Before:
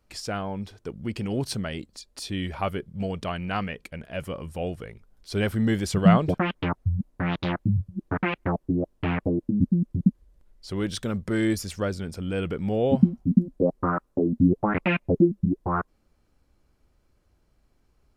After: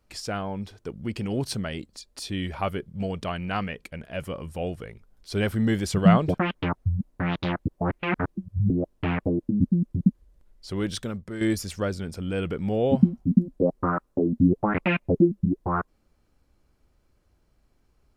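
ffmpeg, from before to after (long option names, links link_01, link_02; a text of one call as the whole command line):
ffmpeg -i in.wav -filter_complex "[0:a]asplit=4[link_01][link_02][link_03][link_04];[link_01]atrim=end=7.672[link_05];[link_02]atrim=start=7.668:end=8.702,asetpts=PTS-STARTPTS,areverse[link_06];[link_03]atrim=start=8.698:end=11.41,asetpts=PTS-STARTPTS,afade=type=out:start_time=2.272:duration=0.44:curve=qua:silence=0.334965[link_07];[link_04]atrim=start=11.41,asetpts=PTS-STARTPTS,afade=type=in:duration=0.004:curve=hsin:silence=0.334965[link_08];[link_05][link_06]acrossfade=duration=0.004:curve1=hsin:curve2=hsin[link_09];[link_07][link_08]concat=n=2:v=0:a=1[link_10];[link_09][link_10]acrossfade=duration=0.004:curve1=hsin:curve2=hsin" out.wav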